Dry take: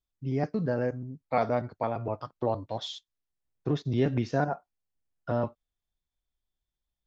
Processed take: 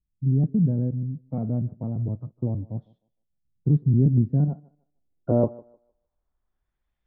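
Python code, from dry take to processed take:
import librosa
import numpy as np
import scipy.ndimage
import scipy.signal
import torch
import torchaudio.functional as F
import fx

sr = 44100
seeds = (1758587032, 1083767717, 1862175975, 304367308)

y = fx.filter_sweep_lowpass(x, sr, from_hz=180.0, to_hz=2100.0, start_s=4.45, end_s=6.94, q=1.5)
y = fx.echo_thinned(y, sr, ms=153, feedback_pct=27, hz=320.0, wet_db=-20)
y = y * librosa.db_to_amplitude(8.0)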